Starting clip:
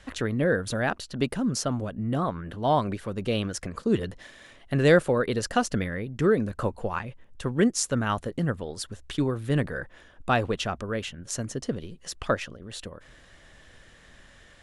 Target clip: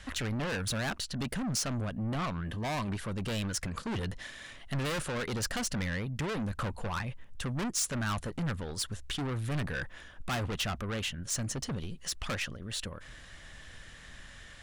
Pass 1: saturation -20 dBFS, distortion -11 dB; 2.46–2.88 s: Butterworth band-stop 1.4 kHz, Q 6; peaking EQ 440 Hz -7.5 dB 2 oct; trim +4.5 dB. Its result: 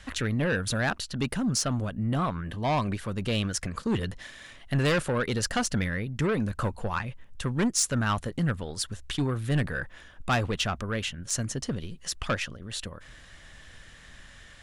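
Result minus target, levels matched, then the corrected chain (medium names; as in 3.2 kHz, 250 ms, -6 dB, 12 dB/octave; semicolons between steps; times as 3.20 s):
saturation: distortion -7 dB
saturation -31.5 dBFS, distortion -4 dB; 2.46–2.88 s: Butterworth band-stop 1.4 kHz, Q 6; peaking EQ 440 Hz -7.5 dB 2 oct; trim +4.5 dB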